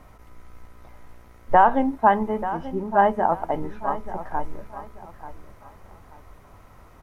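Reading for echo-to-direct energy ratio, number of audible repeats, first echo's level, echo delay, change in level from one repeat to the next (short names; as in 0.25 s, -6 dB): -12.5 dB, 3, -13.0 dB, 0.886 s, -11.0 dB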